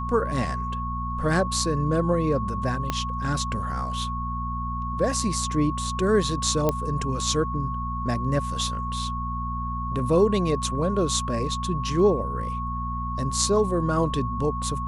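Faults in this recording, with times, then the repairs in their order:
mains hum 60 Hz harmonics 4 −31 dBFS
whistle 1,100 Hz −30 dBFS
0:02.90: click −11 dBFS
0:06.69: click −9 dBFS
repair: click removal
hum removal 60 Hz, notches 4
notch filter 1,100 Hz, Q 30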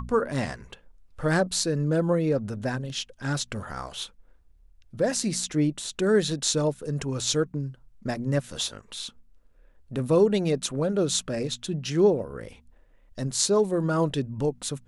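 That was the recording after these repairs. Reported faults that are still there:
0:02.90: click

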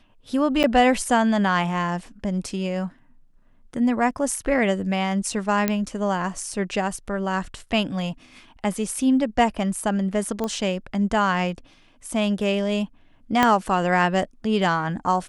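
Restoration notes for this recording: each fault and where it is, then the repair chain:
0:00.63–0:00.64: drop-out 8.3 ms
0:05.68: click −7 dBFS
0:10.44: click −14 dBFS
0:13.43: click −4 dBFS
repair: click removal
repair the gap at 0:00.63, 8.3 ms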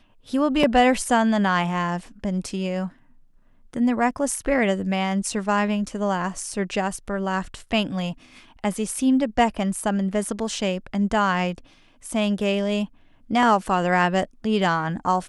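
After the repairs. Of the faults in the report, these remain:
0:13.43: click

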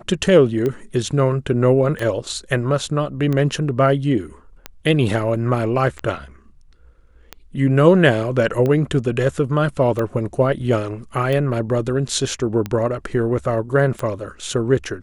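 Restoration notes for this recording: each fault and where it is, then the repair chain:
scratch tick 45 rpm −12 dBFS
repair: click removal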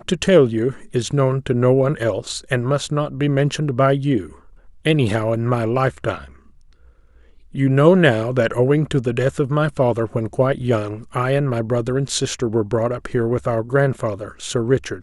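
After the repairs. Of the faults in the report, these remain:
none of them is left

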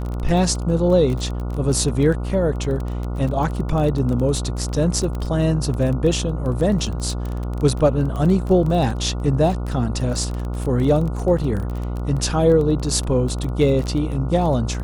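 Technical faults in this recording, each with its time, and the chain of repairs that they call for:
mains buzz 60 Hz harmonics 24 −25 dBFS
surface crackle 20 per second −25 dBFS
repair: click removal
hum removal 60 Hz, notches 24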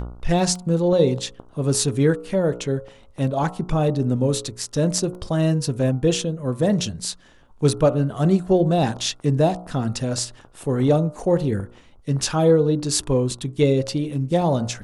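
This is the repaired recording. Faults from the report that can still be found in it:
none of them is left

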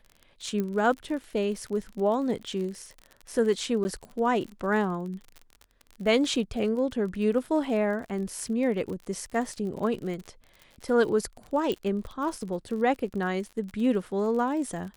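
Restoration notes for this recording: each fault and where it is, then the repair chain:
surface crackle 44 per second −35 dBFS
0:00.60: click −18 dBFS
0:03.84–0:03.85: drop-out 10 ms
0:11.72: click −17 dBFS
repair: click removal
repair the gap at 0:03.84, 10 ms

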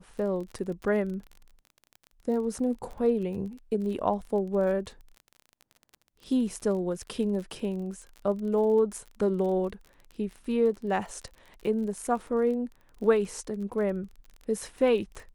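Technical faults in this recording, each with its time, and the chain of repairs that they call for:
surface crackle 37 per second −37 dBFS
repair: click removal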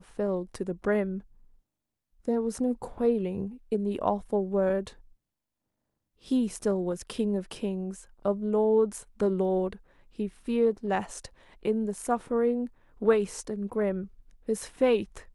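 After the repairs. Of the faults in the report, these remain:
none of them is left

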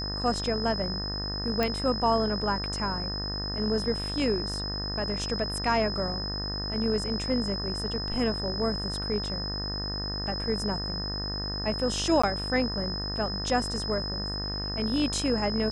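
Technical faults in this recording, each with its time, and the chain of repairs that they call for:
mains buzz 50 Hz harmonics 38 −35 dBFS
whistle 5,100 Hz −33 dBFS
0:01.63: click −13 dBFS
0:12.22–0:12.23: drop-out 15 ms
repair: click removal
hum removal 50 Hz, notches 38
notch filter 5,100 Hz, Q 30
repair the gap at 0:12.22, 15 ms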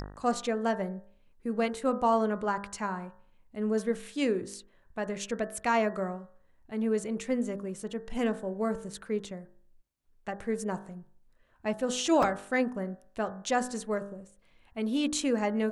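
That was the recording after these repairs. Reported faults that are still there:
none of them is left

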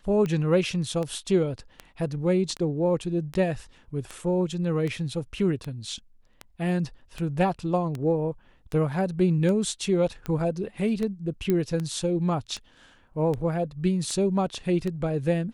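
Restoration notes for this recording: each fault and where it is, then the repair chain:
scratch tick 78 rpm −19 dBFS
0:11.50: click −13 dBFS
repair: click removal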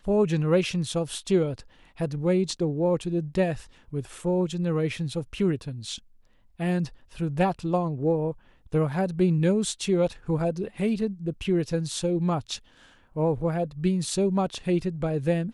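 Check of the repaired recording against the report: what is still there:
0:11.50: click

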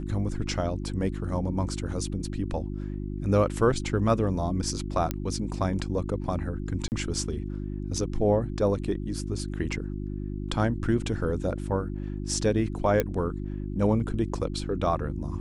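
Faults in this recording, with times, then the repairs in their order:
mains hum 50 Hz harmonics 7 −33 dBFS
0:05.11: click −13 dBFS
0:06.88–0:06.92: drop-out 39 ms
0:13.00: click −11 dBFS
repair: click removal
hum removal 50 Hz, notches 7
repair the gap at 0:06.88, 39 ms

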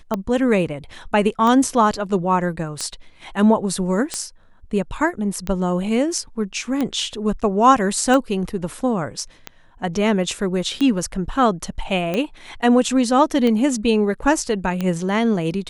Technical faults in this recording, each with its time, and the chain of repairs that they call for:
scratch tick 45 rpm −10 dBFS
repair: click removal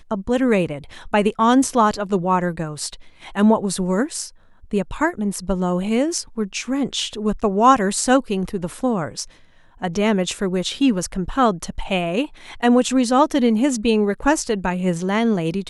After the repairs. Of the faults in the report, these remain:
none of them is left

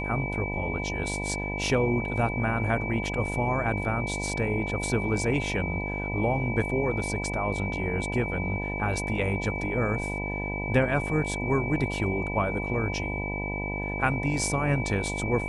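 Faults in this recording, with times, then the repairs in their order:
mains buzz 50 Hz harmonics 20 −33 dBFS
whistle 2,300 Hz −33 dBFS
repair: hum removal 50 Hz, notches 20
notch filter 2,300 Hz, Q 30

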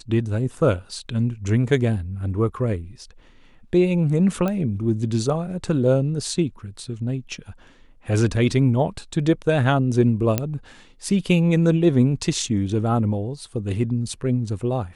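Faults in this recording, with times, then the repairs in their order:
0:04.48: click −13 dBFS
0:10.38: click −6 dBFS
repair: click removal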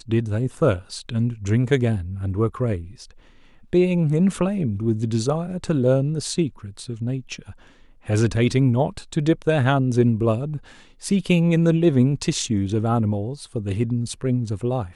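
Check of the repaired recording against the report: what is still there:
none of them is left

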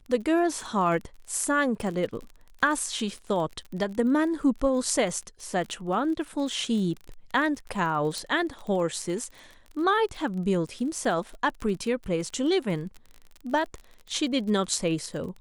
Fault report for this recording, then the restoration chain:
surface crackle 34 per second −35 dBFS
0:08.18: click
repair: click removal

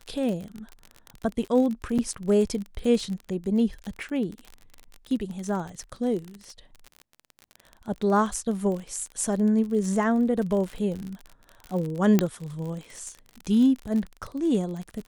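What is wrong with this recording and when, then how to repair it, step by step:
surface crackle 38 per second −31 dBFS
0:01.98–0:01.99: drop-out 6.6 ms
0:12.19: click −7 dBFS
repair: click removal
repair the gap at 0:01.98, 6.6 ms

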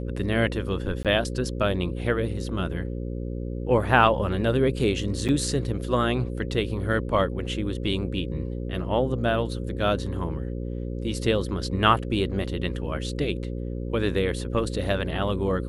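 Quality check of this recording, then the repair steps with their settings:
mains buzz 60 Hz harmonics 9 −31 dBFS
0:01.03–0:01.05: drop-out 17 ms
0:05.28–0:05.29: drop-out 8 ms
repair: hum removal 60 Hz, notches 9
repair the gap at 0:01.03, 17 ms
repair the gap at 0:05.28, 8 ms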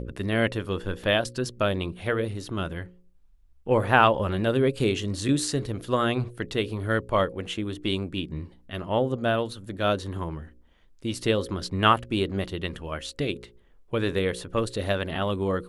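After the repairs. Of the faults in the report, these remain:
none of them is left

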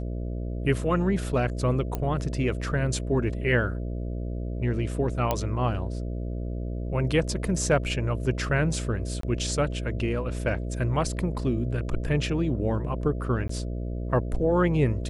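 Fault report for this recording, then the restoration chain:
mains buzz 60 Hz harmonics 11 −31 dBFS
0:01.95: click −16 dBFS
0:05.31: click −10 dBFS
0:09.21–0:09.23: drop-out 23 ms
0:13.48–0:13.49: drop-out 14 ms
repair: click removal
hum removal 60 Hz, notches 11
repair the gap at 0:09.21, 23 ms
repair the gap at 0:13.48, 14 ms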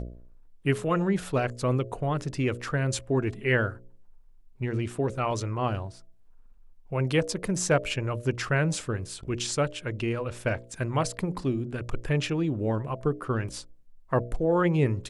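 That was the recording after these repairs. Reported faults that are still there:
none of them is left

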